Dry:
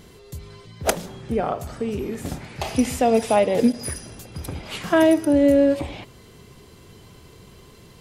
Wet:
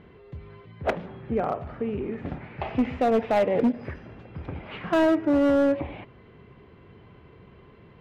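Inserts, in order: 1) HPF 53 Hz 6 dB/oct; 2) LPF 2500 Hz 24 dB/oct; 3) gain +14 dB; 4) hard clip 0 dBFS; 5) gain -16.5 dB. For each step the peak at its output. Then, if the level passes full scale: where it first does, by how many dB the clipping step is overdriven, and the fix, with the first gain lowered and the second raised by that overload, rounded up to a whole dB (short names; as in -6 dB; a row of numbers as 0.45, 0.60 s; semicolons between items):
-3.5, -7.0, +7.0, 0.0, -16.5 dBFS; step 3, 7.0 dB; step 3 +7 dB, step 5 -9.5 dB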